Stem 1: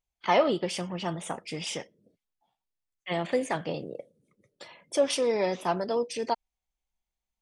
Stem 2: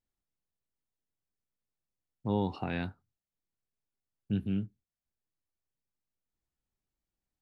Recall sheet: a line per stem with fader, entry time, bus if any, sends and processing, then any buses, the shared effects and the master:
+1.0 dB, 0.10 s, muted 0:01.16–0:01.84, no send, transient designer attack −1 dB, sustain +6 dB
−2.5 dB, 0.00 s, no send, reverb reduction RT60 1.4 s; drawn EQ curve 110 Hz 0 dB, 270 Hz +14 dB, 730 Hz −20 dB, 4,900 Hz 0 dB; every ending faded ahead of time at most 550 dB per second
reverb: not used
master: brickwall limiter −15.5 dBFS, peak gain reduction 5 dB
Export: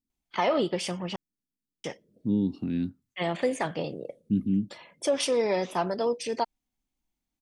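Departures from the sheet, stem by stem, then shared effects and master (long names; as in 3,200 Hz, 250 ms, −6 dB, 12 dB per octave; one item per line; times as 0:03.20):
stem 1: missing transient designer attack −1 dB, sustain +6 dB
stem 2: missing reverb reduction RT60 1.4 s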